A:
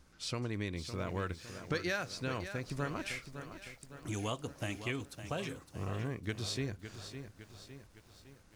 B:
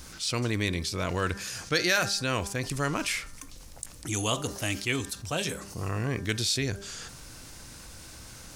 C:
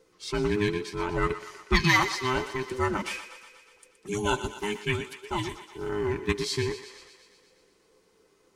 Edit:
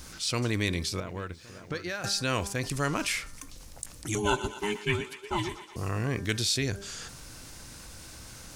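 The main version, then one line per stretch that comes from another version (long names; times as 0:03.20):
B
0:01.00–0:02.04: punch in from A
0:04.15–0:05.76: punch in from C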